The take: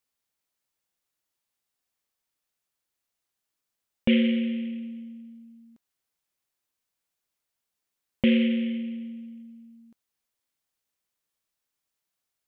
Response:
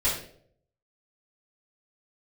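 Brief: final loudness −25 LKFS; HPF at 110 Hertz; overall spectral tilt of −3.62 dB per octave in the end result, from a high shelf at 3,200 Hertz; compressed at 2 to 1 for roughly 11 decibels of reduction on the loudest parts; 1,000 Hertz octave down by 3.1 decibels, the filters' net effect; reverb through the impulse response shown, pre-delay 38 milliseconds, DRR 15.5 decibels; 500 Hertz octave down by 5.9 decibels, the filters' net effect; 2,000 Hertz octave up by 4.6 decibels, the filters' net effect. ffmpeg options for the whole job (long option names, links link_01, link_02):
-filter_complex "[0:a]highpass=110,equalizer=frequency=500:width_type=o:gain=-6.5,equalizer=frequency=1000:width_type=o:gain=-3.5,equalizer=frequency=2000:width_type=o:gain=5,highshelf=frequency=3200:gain=3.5,acompressor=threshold=-38dB:ratio=2,asplit=2[link_01][link_02];[1:a]atrim=start_sample=2205,adelay=38[link_03];[link_02][link_03]afir=irnorm=-1:irlink=0,volume=-26dB[link_04];[link_01][link_04]amix=inputs=2:normalize=0,volume=11.5dB"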